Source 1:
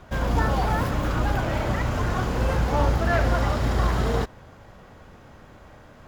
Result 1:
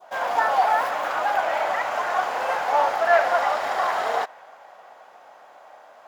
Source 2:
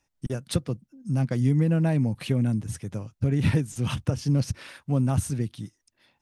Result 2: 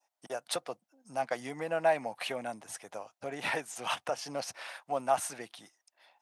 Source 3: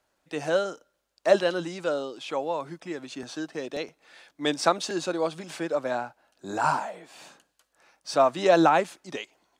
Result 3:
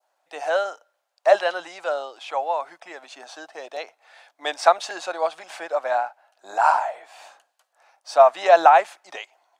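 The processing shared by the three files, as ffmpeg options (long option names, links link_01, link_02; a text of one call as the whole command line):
ffmpeg -i in.wav -af "highpass=frequency=720:width_type=q:width=3.5,adynamicequalizer=threshold=0.0141:dfrequency=1900:dqfactor=0.93:tfrequency=1900:tqfactor=0.93:attack=5:release=100:ratio=0.375:range=3:mode=boostabove:tftype=bell,volume=-2dB" out.wav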